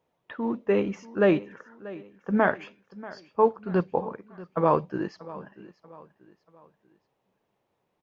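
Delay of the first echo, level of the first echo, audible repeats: 636 ms, -18.5 dB, 3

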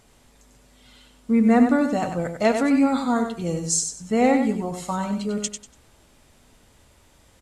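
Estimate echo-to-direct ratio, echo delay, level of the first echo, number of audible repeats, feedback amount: -6.5 dB, 96 ms, -7.0 dB, 3, 25%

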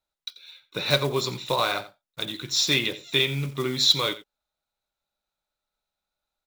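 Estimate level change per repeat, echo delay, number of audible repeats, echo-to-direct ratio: no regular repeats, 87 ms, 1, -16.0 dB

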